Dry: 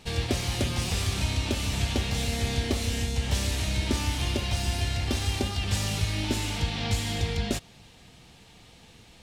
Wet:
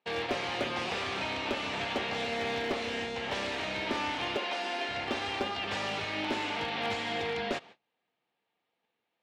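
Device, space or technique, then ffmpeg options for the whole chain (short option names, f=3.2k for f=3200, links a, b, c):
walkie-talkie: -filter_complex "[0:a]asettb=1/sr,asplit=3[a][b][c];[a]atrim=end=4.364[d];[b]atrim=start=4.36:end=4.89,asetpts=PTS-STARTPTS,afade=t=in:d=0.004:c=qsin,afade=t=out:st=0.526:d=0.004:c=qsin,highpass=f=240:w=0.5412,highpass=f=240:w=1.3066[e];[c]atrim=start=4.886[f];[d][e]acrossfade=d=0.004:c1=hsin:c2=qsin[g];[g][f]acrossfade=d=0.004:c1=qsin:c2=hsin,highpass=420,lowpass=2.3k,asoftclip=type=hard:threshold=-29dB,agate=range=-28dB:threshold=-54dB:ratio=16:detection=peak,volume=4.5dB"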